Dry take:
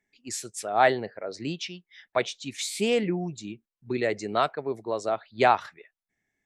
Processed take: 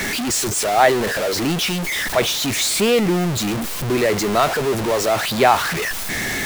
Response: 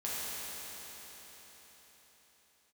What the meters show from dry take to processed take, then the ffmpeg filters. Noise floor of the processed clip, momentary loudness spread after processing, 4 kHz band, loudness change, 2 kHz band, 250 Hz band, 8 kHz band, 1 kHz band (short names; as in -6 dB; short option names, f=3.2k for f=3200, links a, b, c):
-25 dBFS, 6 LU, +14.0 dB, +9.0 dB, +11.0 dB, +11.0 dB, +15.5 dB, +7.0 dB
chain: -af "aeval=exprs='val(0)+0.5*0.0891*sgn(val(0))':c=same,volume=4dB"